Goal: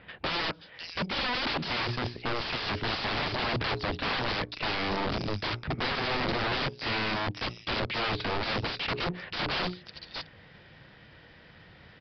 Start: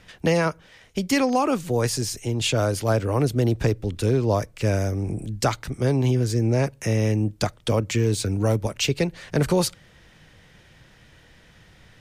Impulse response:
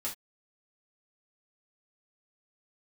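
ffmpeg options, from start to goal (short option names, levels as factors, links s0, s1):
-filter_complex "[0:a]highpass=f=100:p=1,bandreject=f=60:t=h:w=6,bandreject=f=120:t=h:w=6,bandreject=f=180:t=h:w=6,bandreject=f=240:t=h:w=6,bandreject=f=300:t=h:w=6,bandreject=f=360:t=h:w=6,bandreject=f=420:t=h:w=6,asplit=2[s0][s1];[s1]acompressor=threshold=0.02:ratio=16,volume=0.891[s2];[s0][s2]amix=inputs=2:normalize=0,acrossover=split=3400[s3][s4];[s4]adelay=530[s5];[s3][s5]amix=inputs=2:normalize=0,aeval=exprs='(mod(15.8*val(0)+1,2)-1)/15.8':c=same,aeval=exprs='0.0668*(cos(1*acos(clip(val(0)/0.0668,-1,1)))-cos(1*PI/2))+0.00376*(cos(7*acos(clip(val(0)/0.0668,-1,1)))-cos(7*PI/2))':c=same,aresample=11025,aresample=44100"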